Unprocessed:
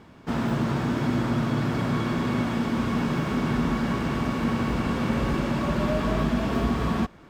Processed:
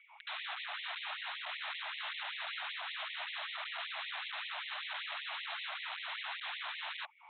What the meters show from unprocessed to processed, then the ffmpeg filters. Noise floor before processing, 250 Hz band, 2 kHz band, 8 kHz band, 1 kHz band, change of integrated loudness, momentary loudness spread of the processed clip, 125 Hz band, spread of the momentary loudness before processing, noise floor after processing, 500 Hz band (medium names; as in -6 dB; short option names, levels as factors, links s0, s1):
-49 dBFS, under -40 dB, -5.0 dB, under -35 dB, -13.0 dB, -14.0 dB, 1 LU, under -40 dB, 1 LU, -57 dBFS, -26.0 dB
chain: -filter_complex "[0:a]highpass=f=85:w=0.5412,highpass=f=85:w=1.3066,acompressor=threshold=0.0251:ratio=12,asplit=3[s0][s1][s2];[s0]bandpass=f=300:t=q:w=8,volume=1[s3];[s1]bandpass=f=870:t=q:w=8,volume=0.501[s4];[s2]bandpass=f=2240:t=q:w=8,volume=0.355[s5];[s3][s4][s5]amix=inputs=3:normalize=0,aresample=8000,aeval=exprs='(mod(299*val(0)+1,2)-1)/299':c=same,aresample=44100,afftfilt=real='re*gte(b*sr/1024,570*pow(1900/570,0.5+0.5*sin(2*PI*5.2*pts/sr)))':imag='im*gte(b*sr/1024,570*pow(1900/570,0.5+0.5*sin(2*PI*5.2*pts/sr)))':win_size=1024:overlap=0.75,volume=5.31"